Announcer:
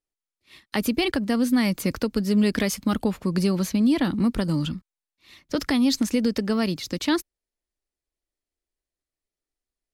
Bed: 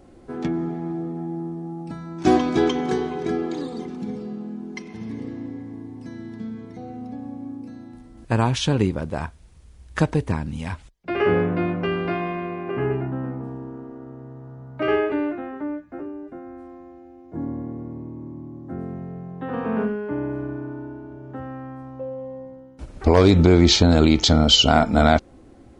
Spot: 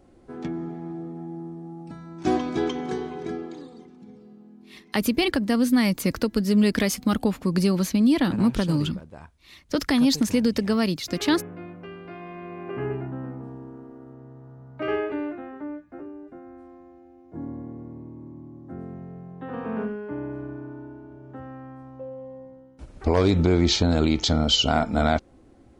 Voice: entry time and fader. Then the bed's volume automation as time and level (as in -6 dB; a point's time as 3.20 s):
4.20 s, +1.0 dB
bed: 3.25 s -6 dB
3.92 s -16 dB
12.06 s -16 dB
12.63 s -5.5 dB